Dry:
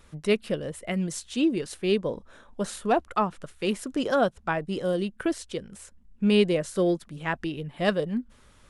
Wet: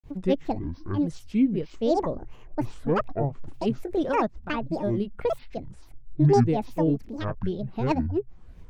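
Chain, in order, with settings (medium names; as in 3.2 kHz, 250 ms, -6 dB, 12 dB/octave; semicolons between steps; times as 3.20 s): tilt EQ -3.5 dB/octave; granulator 189 ms, grains 12 per s, spray 25 ms, pitch spread up and down by 12 st; trim -3 dB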